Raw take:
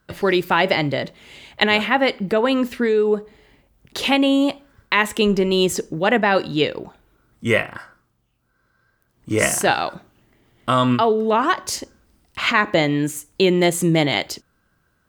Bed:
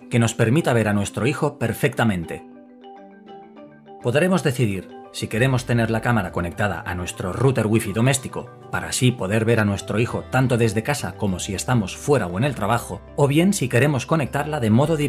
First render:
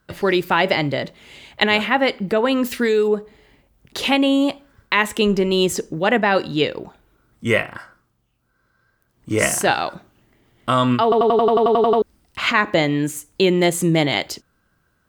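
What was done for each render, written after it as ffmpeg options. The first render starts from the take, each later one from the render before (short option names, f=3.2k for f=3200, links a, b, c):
-filter_complex "[0:a]asettb=1/sr,asplit=3[a][b][c];[a]atrim=end=2.644[d];[b]atrim=start=2.64:end=3.08,asetpts=PTS-STARTPTS,afade=t=in:d=0.004:c=qsin,afade=t=out:st=0.436:d=0.004:c=qsin,highshelf=f=3.2k:g=12[e];[c]atrim=start=3.076[f];[d][e]acrossfade=d=0.004:c1=hsin:c2=qsin[g];[g][f]acrossfade=d=0.004:c1=qsin:c2=hsin,asplit=12[h][i][j][k][l][m][n][o][p][q][r][s];[h]atrim=end=11.122[t];[i]atrim=start=11.028:end=11.122[u];[j]atrim=start=11.028:end=11.122[v];[k]atrim=start=11.028:end=11.122[w];[l]atrim=start=11.028:end=11.122[x];[m]atrim=start=11.028:end=11.122[y];[n]atrim=start=11.028:end=11.122[z];[o]atrim=start=11.028:end=11.122[aa];[p]atrim=start=11.028:end=11.122[ab];[q]atrim=start=11.028:end=11.122[ac];[r]atrim=start=11.028:end=11.122[ad];[s]atrim=start=12.018[ae];[t][u]acrossfade=d=0.004:c1=hsin:c2=hsin[af];[af][v]acrossfade=d=0.004:c1=hsin:c2=hsin[ag];[ag][w]acrossfade=d=0.004:c1=hsin:c2=hsin[ah];[ah][x]acrossfade=d=0.004:c1=hsin:c2=hsin[ai];[ai][y]acrossfade=d=0.004:c1=hsin:c2=hsin[aj];[aj][z]acrossfade=d=0.004:c1=hsin:c2=hsin[ak];[ak][aa]acrossfade=d=0.004:c1=hsin:c2=hsin[al];[al][ab]acrossfade=d=0.004:c1=hsin:c2=hsin[am];[am][ac]acrossfade=d=0.004:c1=hsin:c2=hsin[an];[an][ad]acrossfade=d=0.004:c1=hsin:c2=hsin[ao];[ao][ae]acrossfade=d=0.004:c1=hsin:c2=hsin"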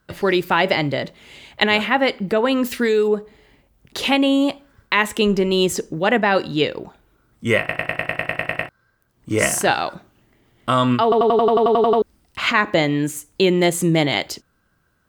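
-filter_complex "[0:a]asplit=12[a][b][c][d][e][f][g][h][i][j][k][l];[a]atrim=end=7.692[m];[b]atrim=start=7.588:end=7.692[n];[c]atrim=start=7.588:end=7.692[o];[d]atrim=start=7.588:end=7.692[p];[e]atrim=start=7.588:end=7.692[q];[f]atrim=start=7.588:end=7.692[r];[g]atrim=start=7.588:end=7.692[s];[h]atrim=start=7.588:end=7.692[t];[i]atrim=start=7.588:end=7.692[u];[j]atrim=start=7.588:end=7.692[v];[k]atrim=start=7.588:end=7.692[w];[l]atrim=start=8.688[x];[m][n]acrossfade=d=0.004:c1=hsin:c2=hsin[y];[y][o]acrossfade=d=0.004:c1=hsin:c2=hsin[z];[z][p]acrossfade=d=0.004:c1=hsin:c2=hsin[aa];[aa][q]acrossfade=d=0.004:c1=hsin:c2=hsin[ab];[ab][r]acrossfade=d=0.004:c1=hsin:c2=hsin[ac];[ac][s]acrossfade=d=0.004:c1=hsin:c2=hsin[ad];[ad][t]acrossfade=d=0.004:c1=hsin:c2=hsin[ae];[ae][u]acrossfade=d=0.004:c1=hsin:c2=hsin[af];[af][v]acrossfade=d=0.004:c1=hsin:c2=hsin[ag];[ag][w]acrossfade=d=0.004:c1=hsin:c2=hsin[ah];[ah][x]acrossfade=d=0.004:c1=hsin:c2=hsin"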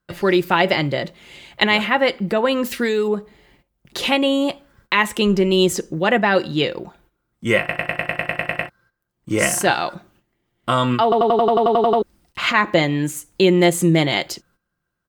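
-af "aecho=1:1:5.7:0.34,agate=range=-13dB:threshold=-54dB:ratio=16:detection=peak"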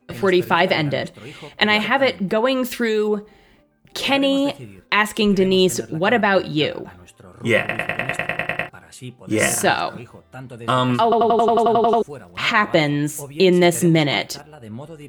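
-filter_complex "[1:a]volume=-17.5dB[a];[0:a][a]amix=inputs=2:normalize=0"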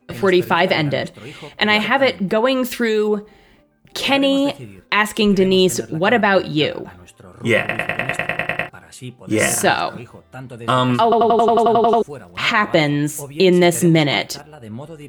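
-af "volume=2dB,alimiter=limit=-3dB:level=0:latency=1"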